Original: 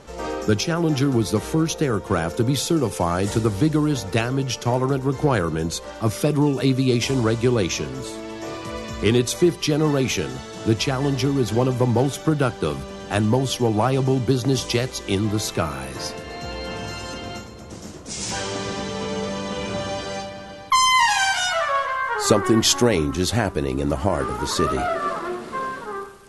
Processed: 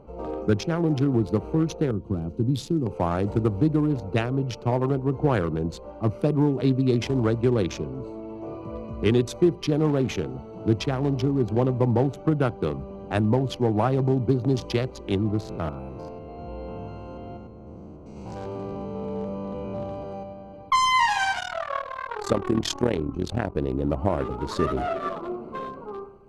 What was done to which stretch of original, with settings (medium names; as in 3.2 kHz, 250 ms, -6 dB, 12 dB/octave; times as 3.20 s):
1.91–2.86 s: high-order bell 1 kHz -12.5 dB 2.7 oct
15.40–20.54 s: spectrogram pixelated in time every 100 ms
21.40–23.56 s: AM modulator 39 Hz, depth 60%
whole clip: local Wiener filter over 25 samples; treble shelf 4.8 kHz -12 dB; trim -2 dB